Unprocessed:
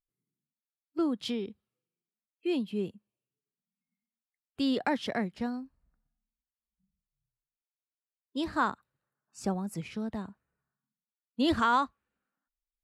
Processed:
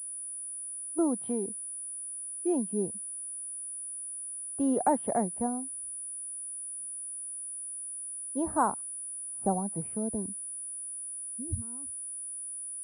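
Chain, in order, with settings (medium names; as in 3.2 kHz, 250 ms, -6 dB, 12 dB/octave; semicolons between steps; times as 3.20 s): low-pass sweep 800 Hz -> 110 Hz, 9.94–10.68 s; class-D stage that switches slowly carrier 9.8 kHz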